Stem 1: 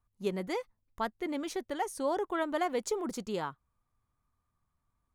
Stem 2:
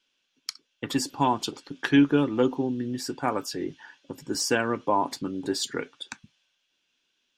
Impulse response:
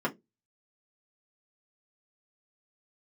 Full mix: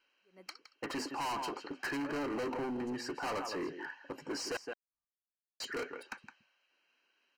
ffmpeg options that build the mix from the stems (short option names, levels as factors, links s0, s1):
-filter_complex "[0:a]aeval=exprs='val(0)*pow(10,-29*(0.5-0.5*cos(2*PI*2.4*n/s))/20)':c=same,volume=0.15[s0];[1:a]asoftclip=type=tanh:threshold=0.168,asplit=2[s1][s2];[s2]highpass=f=720:p=1,volume=3.98,asoftclip=type=tanh:threshold=0.168[s3];[s1][s3]amix=inputs=2:normalize=0,lowpass=f=1400:p=1,volume=0.501,volume=1.06,asplit=3[s4][s5][s6];[s4]atrim=end=4.57,asetpts=PTS-STARTPTS,afade=t=out:st=4.566:d=0.004:c=hsin[s7];[s5]atrim=start=4.57:end=5.6,asetpts=PTS-STARTPTS,volume=0[s8];[s6]atrim=start=5.6,asetpts=PTS-STARTPTS,afade=t=in:d=0.004:c=hsin[s9];[s7][s8][s9]concat=n=3:v=0:a=1,asplit=2[s10][s11];[s11]volume=0.188,aecho=0:1:165:1[s12];[s0][s10][s12]amix=inputs=3:normalize=0,bass=f=250:g=-10,treble=f=4000:g=-7,asoftclip=type=hard:threshold=0.0188,asuperstop=centerf=3500:order=12:qfactor=5.9"